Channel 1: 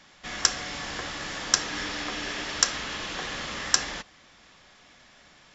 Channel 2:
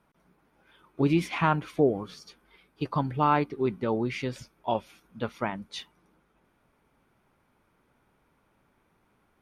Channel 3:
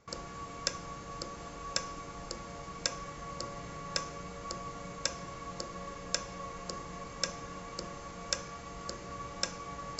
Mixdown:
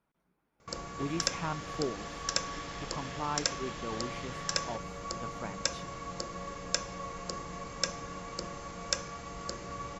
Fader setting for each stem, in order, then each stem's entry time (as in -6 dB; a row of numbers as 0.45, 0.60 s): -13.5, -12.0, +2.0 dB; 0.75, 0.00, 0.60 s